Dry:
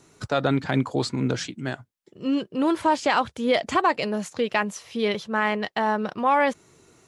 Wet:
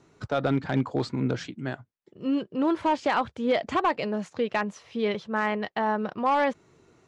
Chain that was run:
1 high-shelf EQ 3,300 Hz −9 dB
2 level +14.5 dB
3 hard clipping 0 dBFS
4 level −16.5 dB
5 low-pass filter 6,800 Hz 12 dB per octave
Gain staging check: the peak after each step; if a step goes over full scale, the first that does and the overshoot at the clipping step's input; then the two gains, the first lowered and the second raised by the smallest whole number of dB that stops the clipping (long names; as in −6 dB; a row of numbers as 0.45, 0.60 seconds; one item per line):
−10.0, +4.5, 0.0, −16.5, −16.0 dBFS
step 2, 4.5 dB
step 2 +9.5 dB, step 4 −11.5 dB